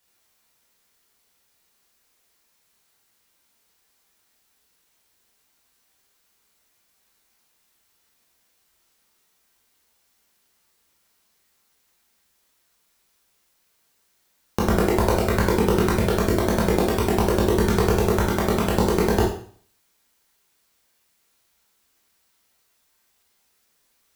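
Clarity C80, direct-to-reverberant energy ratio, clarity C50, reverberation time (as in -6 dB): 8.5 dB, -4.5 dB, 4.0 dB, 0.50 s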